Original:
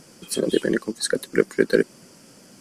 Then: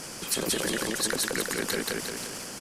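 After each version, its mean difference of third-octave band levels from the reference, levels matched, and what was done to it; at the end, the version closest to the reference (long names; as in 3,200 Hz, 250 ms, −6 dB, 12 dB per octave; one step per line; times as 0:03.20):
15.5 dB: brickwall limiter −12 dBFS, peak gain reduction 9 dB
repeating echo 176 ms, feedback 30%, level −4 dB
transient designer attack +1 dB, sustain +6 dB
every bin compressed towards the loudest bin 2 to 1
level −3 dB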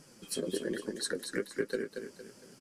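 5.5 dB: notch filter 710 Hz, Q 21
downward compressor, threshold −22 dBFS, peak gain reduction 11 dB
flanger 1.2 Hz, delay 6.6 ms, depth 5.5 ms, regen +36%
repeating echo 230 ms, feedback 37%, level −7 dB
level −4.5 dB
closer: second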